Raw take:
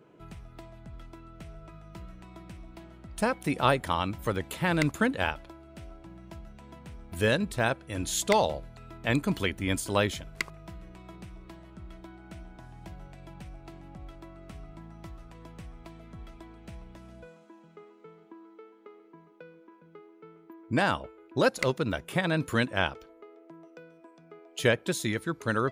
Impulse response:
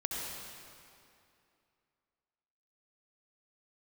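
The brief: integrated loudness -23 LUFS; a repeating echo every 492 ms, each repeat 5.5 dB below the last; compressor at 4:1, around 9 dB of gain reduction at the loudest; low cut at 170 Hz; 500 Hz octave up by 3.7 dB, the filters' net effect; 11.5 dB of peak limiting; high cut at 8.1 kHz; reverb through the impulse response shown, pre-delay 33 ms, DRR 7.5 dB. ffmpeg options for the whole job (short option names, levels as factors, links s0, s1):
-filter_complex "[0:a]highpass=170,lowpass=8100,equalizer=f=500:t=o:g=4.5,acompressor=threshold=0.0447:ratio=4,alimiter=level_in=1.06:limit=0.0631:level=0:latency=1,volume=0.944,aecho=1:1:492|984|1476|1968|2460|2952|3444:0.531|0.281|0.149|0.079|0.0419|0.0222|0.0118,asplit=2[s0][s1];[1:a]atrim=start_sample=2205,adelay=33[s2];[s1][s2]afir=irnorm=-1:irlink=0,volume=0.266[s3];[s0][s3]amix=inputs=2:normalize=0,volume=6.31"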